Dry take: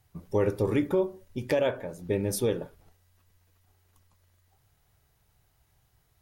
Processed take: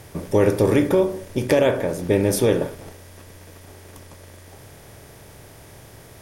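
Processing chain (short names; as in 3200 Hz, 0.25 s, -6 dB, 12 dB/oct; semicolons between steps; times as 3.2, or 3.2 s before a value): per-bin compression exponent 0.6; gain +6 dB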